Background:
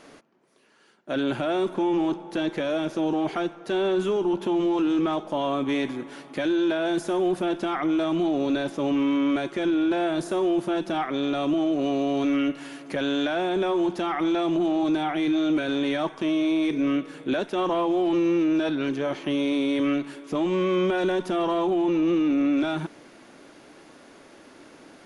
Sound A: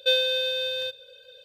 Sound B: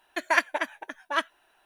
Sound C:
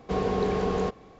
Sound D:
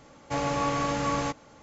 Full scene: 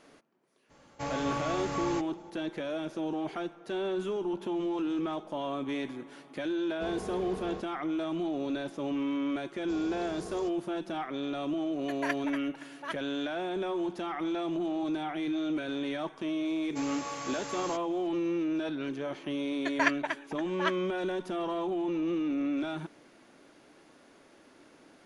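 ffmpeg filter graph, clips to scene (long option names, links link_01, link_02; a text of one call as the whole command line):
ffmpeg -i bed.wav -i cue0.wav -i cue1.wav -i cue2.wav -i cue3.wav -filter_complex "[4:a]asplit=2[link_01][link_02];[3:a]asplit=2[link_03][link_04];[2:a]asplit=2[link_05][link_06];[0:a]volume=-8.5dB[link_07];[link_04]aexciter=amount=3.2:drive=8.8:freq=4600[link_08];[link_02]aemphasis=mode=production:type=bsi[link_09];[link_06]lowpass=frequency=7400:width=0.5412,lowpass=frequency=7400:width=1.3066[link_10];[link_01]atrim=end=1.62,asetpts=PTS-STARTPTS,volume=-6.5dB,afade=type=in:duration=0.02,afade=type=out:start_time=1.6:duration=0.02,adelay=690[link_11];[link_03]atrim=end=1.19,asetpts=PTS-STARTPTS,volume=-13dB,afade=type=in:duration=0.004:curve=hsin,afade=type=out:start_time=1.186:duration=0.004:curve=hsin,adelay=6710[link_12];[link_08]atrim=end=1.19,asetpts=PTS-STARTPTS,volume=-17dB,afade=type=in:duration=0.004:curve=hsin,afade=type=out:start_time=1.186:duration=0.004:curve=hsin,adelay=9590[link_13];[link_05]atrim=end=1.65,asetpts=PTS-STARTPTS,volume=-11.5dB,afade=type=in:duration=0.004:curve=hsin,afade=type=out:start_time=1.646:duration=0.004:curve=hsin,adelay=11720[link_14];[link_09]atrim=end=1.62,asetpts=PTS-STARTPTS,volume=-10.5dB,afade=type=in:duration=0.004:curve=hsin,afade=type=out:start_time=1.616:duration=0.004:curve=hsin,adelay=16450[link_15];[link_10]atrim=end=1.65,asetpts=PTS-STARTPTS,volume=-4.5dB,afade=type=in:duration=0.004:curve=hsin,afade=type=out:start_time=1.646:duration=0.004:curve=hsin,adelay=19490[link_16];[link_07][link_11][link_12][link_13][link_14][link_15][link_16]amix=inputs=7:normalize=0" out.wav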